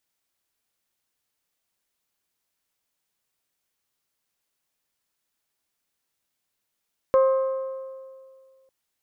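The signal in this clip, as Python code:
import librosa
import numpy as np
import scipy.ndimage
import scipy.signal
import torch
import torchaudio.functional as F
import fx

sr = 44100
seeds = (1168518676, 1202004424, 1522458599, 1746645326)

y = fx.strike_metal(sr, length_s=1.55, level_db=-13.5, body='bell', hz=530.0, decay_s=2.06, tilt_db=10.0, modes=5)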